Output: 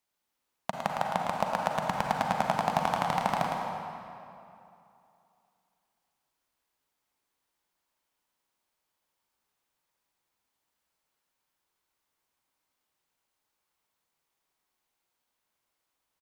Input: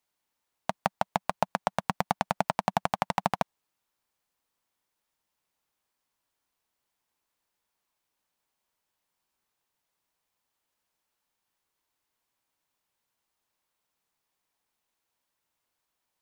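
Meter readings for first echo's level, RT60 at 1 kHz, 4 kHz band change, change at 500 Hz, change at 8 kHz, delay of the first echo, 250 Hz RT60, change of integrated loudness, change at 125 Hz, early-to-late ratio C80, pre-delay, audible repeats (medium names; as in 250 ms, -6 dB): -6.0 dB, 2.7 s, +0.5 dB, +1.0 dB, 0.0 dB, 109 ms, 2.7 s, +0.5 dB, +0.5 dB, 0.5 dB, 36 ms, 1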